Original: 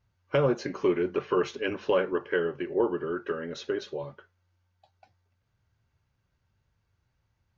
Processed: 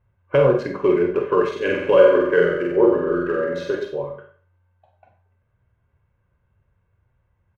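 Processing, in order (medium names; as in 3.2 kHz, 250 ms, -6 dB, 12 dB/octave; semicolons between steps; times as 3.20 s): local Wiener filter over 9 samples; treble shelf 4 kHz -11.5 dB; comb 1.9 ms, depth 31%; 1.47–3.75 s: flutter echo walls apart 7.9 m, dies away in 0.82 s; Schroeder reverb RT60 0.41 s, combs from 31 ms, DRR 3 dB; trim +6 dB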